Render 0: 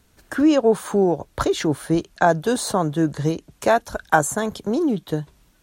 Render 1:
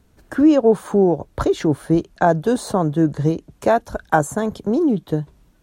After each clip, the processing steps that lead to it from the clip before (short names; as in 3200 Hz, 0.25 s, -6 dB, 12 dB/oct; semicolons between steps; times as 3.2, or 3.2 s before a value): tilt shelf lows +5 dB, about 1100 Hz; gain -1 dB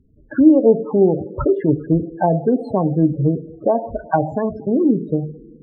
two-slope reverb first 0.53 s, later 2.6 s, from -16 dB, DRR 7 dB; loudest bins only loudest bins 16; treble ducked by the level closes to 650 Hz, closed at -12 dBFS; gain +1 dB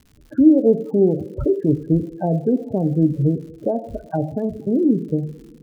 running mean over 42 samples; crackle 150/s -41 dBFS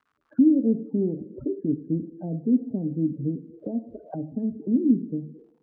auto-wah 240–1300 Hz, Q 3.8, down, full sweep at -21.5 dBFS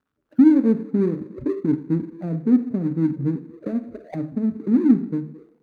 median filter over 41 samples; Schroeder reverb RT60 0.31 s, combs from 29 ms, DRR 14.5 dB; gain +4.5 dB